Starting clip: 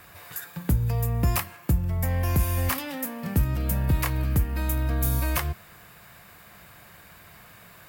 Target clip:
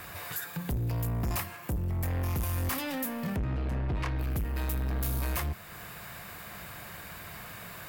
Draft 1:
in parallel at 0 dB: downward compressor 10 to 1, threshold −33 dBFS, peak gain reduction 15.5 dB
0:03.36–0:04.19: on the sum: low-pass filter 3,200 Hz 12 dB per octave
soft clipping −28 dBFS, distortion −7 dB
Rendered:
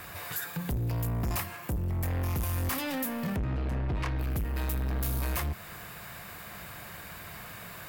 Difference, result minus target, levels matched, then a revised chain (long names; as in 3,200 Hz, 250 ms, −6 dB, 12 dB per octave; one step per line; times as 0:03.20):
downward compressor: peak gain reduction −7.5 dB
in parallel at 0 dB: downward compressor 10 to 1, threshold −41.5 dBFS, peak gain reduction 23 dB
0:03.36–0:04.19: on the sum: low-pass filter 3,200 Hz 12 dB per octave
soft clipping −28 dBFS, distortion −8 dB